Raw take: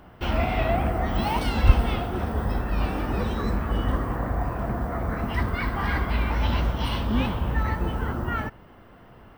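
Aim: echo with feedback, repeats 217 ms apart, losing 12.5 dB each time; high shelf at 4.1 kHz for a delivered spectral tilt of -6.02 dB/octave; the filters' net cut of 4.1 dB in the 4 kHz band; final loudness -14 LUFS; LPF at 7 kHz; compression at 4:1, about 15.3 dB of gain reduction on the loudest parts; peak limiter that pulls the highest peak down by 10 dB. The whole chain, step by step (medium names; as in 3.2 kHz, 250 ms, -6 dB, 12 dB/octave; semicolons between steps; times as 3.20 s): low-pass 7 kHz; peaking EQ 4 kHz -3.5 dB; treble shelf 4.1 kHz -4 dB; compression 4:1, threshold -27 dBFS; peak limiter -25 dBFS; feedback delay 217 ms, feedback 24%, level -12.5 dB; trim +20.5 dB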